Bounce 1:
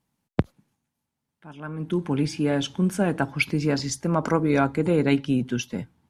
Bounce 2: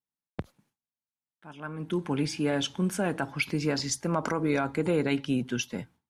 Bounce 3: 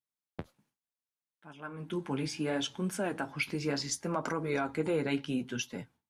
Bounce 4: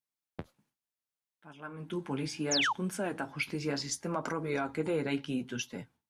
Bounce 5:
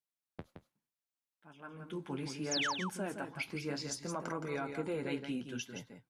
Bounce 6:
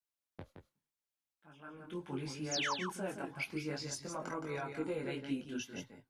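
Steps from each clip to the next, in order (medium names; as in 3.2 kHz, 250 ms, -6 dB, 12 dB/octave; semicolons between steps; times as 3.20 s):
gate with hold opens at -52 dBFS; bass shelf 410 Hz -6.5 dB; peak limiter -16.5 dBFS, peak gain reduction 9.5 dB
bass shelf 160 Hz -4.5 dB; flange 0.69 Hz, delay 6.6 ms, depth 9.3 ms, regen -40%
painted sound fall, 2.51–2.73 s, 780–7400 Hz -28 dBFS; trim -1 dB
delay 169 ms -7 dB; trim -5.5 dB
chorus voices 6, 0.72 Hz, delay 21 ms, depth 2 ms; trim +1.5 dB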